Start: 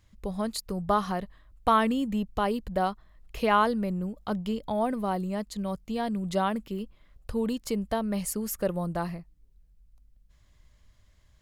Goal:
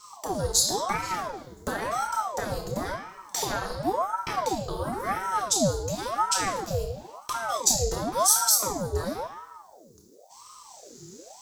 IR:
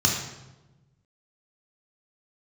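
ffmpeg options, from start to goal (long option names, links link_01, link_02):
-filter_complex "[0:a]acompressor=threshold=-38dB:ratio=6,aexciter=amount=6.7:drive=5.8:freq=4300[link_01];[1:a]atrim=start_sample=2205[link_02];[link_01][link_02]afir=irnorm=-1:irlink=0,aeval=exprs='val(0)*sin(2*PI*700*n/s+700*0.65/0.95*sin(2*PI*0.95*n/s))':channel_layout=same,volume=-3.5dB"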